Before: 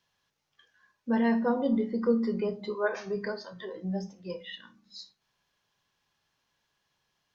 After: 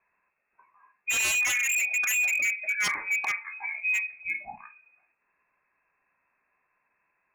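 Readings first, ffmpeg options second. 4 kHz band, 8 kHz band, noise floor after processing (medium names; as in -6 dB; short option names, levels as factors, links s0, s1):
+9.5 dB, no reading, -77 dBFS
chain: -af "lowpass=f=2300:t=q:w=0.5098,lowpass=f=2300:t=q:w=0.6013,lowpass=f=2300:t=q:w=0.9,lowpass=f=2300:t=q:w=2.563,afreqshift=-2700,aeval=exprs='0.0473*(abs(mod(val(0)/0.0473+3,4)-2)-1)':c=same,volume=1.88"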